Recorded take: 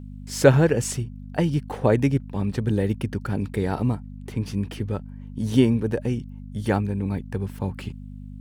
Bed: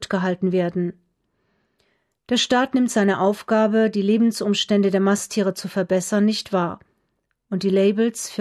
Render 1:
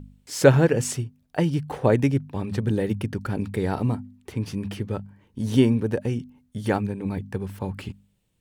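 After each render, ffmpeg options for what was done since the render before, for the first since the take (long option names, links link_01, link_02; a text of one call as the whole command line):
ffmpeg -i in.wav -af "bandreject=frequency=50:width_type=h:width=4,bandreject=frequency=100:width_type=h:width=4,bandreject=frequency=150:width_type=h:width=4,bandreject=frequency=200:width_type=h:width=4,bandreject=frequency=250:width_type=h:width=4" out.wav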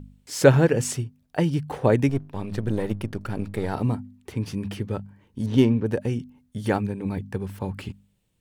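ffmpeg -i in.wav -filter_complex "[0:a]asettb=1/sr,asplit=3[link_01][link_02][link_03];[link_01]atrim=end=2.094[link_04];[link_02]atrim=start=2.09:end=3.74,asetpts=PTS-STARTPTS,afade=type=in:duration=0.004:curve=qsin,afade=type=out:start_time=1.646:duration=0.004:curve=qsin,aeval=exprs='if(lt(val(0),0),0.447*val(0),val(0))':channel_layout=same[link_05];[link_03]atrim=start=3.736[link_06];[link_04][link_05]acrossfade=duration=0.004:curve1=hsin:curve2=qsin[link_07];[link_07][link_06]acrossfade=duration=0.004:curve1=qsin:curve2=hsin,asettb=1/sr,asplit=3[link_08][link_09][link_10];[link_08]atrim=end=5.464[link_11];[link_09]atrim=start=5.46:end=5.86,asetpts=PTS-STARTPTS,afade=type=in:duration=0.004:curve=qsin,afade=type=out:start_time=0.396:duration=0.004:curve=qsin,adynamicsmooth=sensitivity=4:basefreq=2400[link_12];[link_10]atrim=start=5.856[link_13];[link_11][link_12]acrossfade=duration=0.004:curve1=hsin:curve2=qsin[link_14];[link_14][link_13]acrossfade=duration=0.004:curve1=qsin:curve2=hsin" out.wav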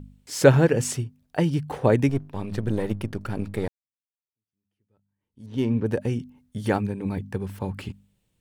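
ffmpeg -i in.wav -filter_complex "[0:a]asplit=2[link_01][link_02];[link_01]atrim=end=3.68,asetpts=PTS-STARTPTS,afade=type=out:start_time=3.676:duration=0.004:curve=hsin[link_03];[link_02]atrim=start=3.68,asetpts=PTS-STARTPTS,afade=type=in:duration=2.09:curve=exp[link_04];[link_03][link_04]concat=n=2:v=0:a=1" out.wav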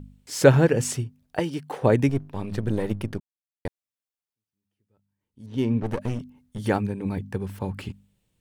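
ffmpeg -i in.wav -filter_complex "[0:a]asettb=1/sr,asplit=3[link_01][link_02][link_03];[link_01]atrim=end=1.394[link_04];[link_02]atrim=start=1.39:end=1.82,asetpts=PTS-STARTPTS,afade=type=in:duration=0.004:curve=qsin,afade=type=out:start_time=0.426:duration=0.004:curve=qsin,highpass=280[link_05];[link_03]atrim=start=1.816[link_06];[link_04][link_05]acrossfade=duration=0.004:curve1=hsin:curve2=qsin[link_07];[link_07][link_06]acrossfade=duration=0.004:curve1=qsin:curve2=hsin,asettb=1/sr,asplit=3[link_08][link_09][link_10];[link_08]atrim=end=5.824[link_11];[link_09]atrim=start=5.82:end=6.59,asetpts=PTS-STARTPTS,afade=type=in:duration=0.004:curve=qsin,afade=type=out:start_time=0.766:duration=0.004:curve=qsin,aeval=exprs='clip(val(0),-1,0.0224)':channel_layout=same[link_12];[link_10]atrim=start=6.586[link_13];[link_11][link_12]acrossfade=duration=0.004:curve1=hsin:curve2=qsin[link_14];[link_14][link_13]acrossfade=duration=0.004:curve1=qsin:curve2=hsin,asplit=3[link_15][link_16][link_17];[link_15]atrim=end=3.2,asetpts=PTS-STARTPTS,afade=type=out:start_time=3.196:duration=0.004:curve=hsin[link_18];[link_16]atrim=start=3.2:end=3.65,asetpts=PTS-STARTPTS,volume=0[link_19];[link_17]atrim=start=3.65,asetpts=PTS-STARTPTS,afade=type=in:duration=0.004:curve=hsin[link_20];[link_18][link_19][link_20]concat=n=3:v=0:a=1" out.wav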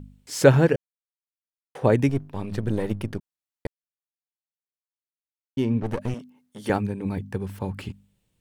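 ffmpeg -i in.wav -filter_complex "[0:a]asettb=1/sr,asplit=3[link_01][link_02][link_03];[link_01]atrim=end=6.144[link_04];[link_02]atrim=start=6.14:end=6.7,asetpts=PTS-STARTPTS,afade=type=in:duration=0.004:curve=qsin,afade=type=out:start_time=0.556:duration=0.004:curve=qsin,highpass=270[link_05];[link_03]atrim=start=6.696[link_06];[link_04][link_05]acrossfade=duration=0.004:curve1=hsin:curve2=qsin[link_07];[link_07][link_06]acrossfade=duration=0.004:curve1=qsin:curve2=hsin,asplit=5[link_08][link_09][link_10][link_11][link_12];[link_08]atrim=end=0.76,asetpts=PTS-STARTPTS,afade=type=out:start_time=0.756:duration=0.004:curve=hsin[link_13];[link_09]atrim=start=0.76:end=1.75,asetpts=PTS-STARTPTS,volume=0[link_14];[link_10]atrim=start=1.75:end=3.67,asetpts=PTS-STARTPTS,afade=type=in:duration=0.004:curve=hsin,afade=type=out:start_time=1.916:duration=0.004:curve=hsin[link_15];[link_11]atrim=start=3.67:end=5.57,asetpts=PTS-STARTPTS,volume=0[link_16];[link_12]atrim=start=5.57,asetpts=PTS-STARTPTS,afade=type=in:duration=0.004:curve=hsin[link_17];[link_13][link_14][link_15][link_16][link_17]concat=n=5:v=0:a=1" out.wav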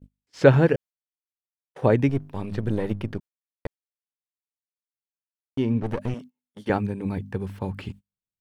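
ffmpeg -i in.wav -filter_complex "[0:a]acrossover=split=4700[link_01][link_02];[link_02]acompressor=threshold=-59dB:ratio=4:attack=1:release=60[link_03];[link_01][link_03]amix=inputs=2:normalize=0,agate=range=-29dB:threshold=-40dB:ratio=16:detection=peak" out.wav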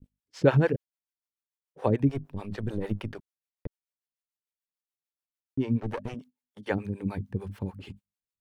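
ffmpeg -i in.wav -filter_complex "[0:a]acrossover=split=410[link_01][link_02];[link_01]aeval=exprs='val(0)*(1-1/2+1/2*cos(2*PI*6.8*n/s))':channel_layout=same[link_03];[link_02]aeval=exprs='val(0)*(1-1/2-1/2*cos(2*PI*6.8*n/s))':channel_layout=same[link_04];[link_03][link_04]amix=inputs=2:normalize=0" out.wav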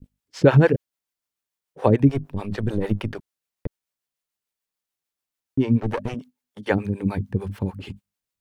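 ffmpeg -i in.wav -af "volume=7.5dB,alimiter=limit=-3dB:level=0:latency=1" out.wav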